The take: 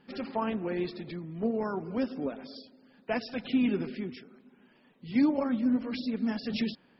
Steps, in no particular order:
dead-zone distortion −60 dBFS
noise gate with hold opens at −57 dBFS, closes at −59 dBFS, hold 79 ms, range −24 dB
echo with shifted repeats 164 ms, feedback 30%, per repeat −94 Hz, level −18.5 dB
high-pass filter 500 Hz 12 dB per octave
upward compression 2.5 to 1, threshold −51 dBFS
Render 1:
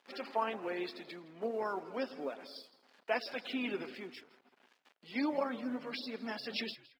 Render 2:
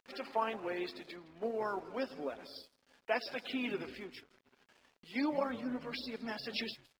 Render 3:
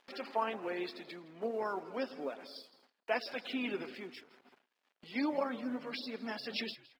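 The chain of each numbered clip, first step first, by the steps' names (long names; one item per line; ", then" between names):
dead-zone distortion, then noise gate with hold, then upward compression, then echo with shifted repeats, then high-pass filter
high-pass filter, then noise gate with hold, then upward compression, then echo with shifted repeats, then dead-zone distortion
dead-zone distortion, then echo with shifted repeats, then high-pass filter, then noise gate with hold, then upward compression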